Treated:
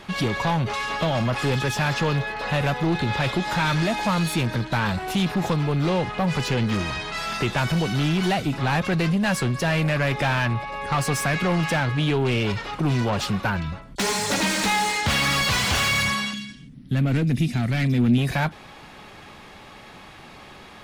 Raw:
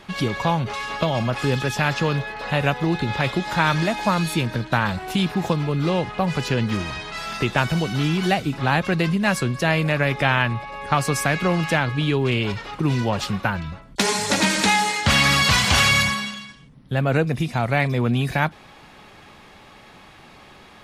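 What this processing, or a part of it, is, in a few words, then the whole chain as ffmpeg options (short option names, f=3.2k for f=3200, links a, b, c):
saturation between pre-emphasis and de-emphasis: -filter_complex "[0:a]highshelf=f=4.9k:g=11,asoftclip=type=tanh:threshold=-19dB,highshelf=f=4.9k:g=-11,asettb=1/sr,asplit=3[a][b][c];[a]atrim=end=16.334[d];[b]atrim=start=16.33:end=18.18,asetpts=PTS-STARTPTS,afade=t=in:d=0.004:c=qsin,afade=t=out:st=1.846:d=0.004:c=qsin,equalizer=f=250:t=o:w=1:g=8,equalizer=f=500:t=o:w=1:g=-7,equalizer=f=1k:t=o:w=1:g=-12[e];[c]atrim=start=18.176[f];[d][e]acrossfade=d=0.004:c1=hsin:c2=qsin[g];[g][f]acrossfade=d=0.004:c1=qsin:c2=hsin,volume=2.5dB"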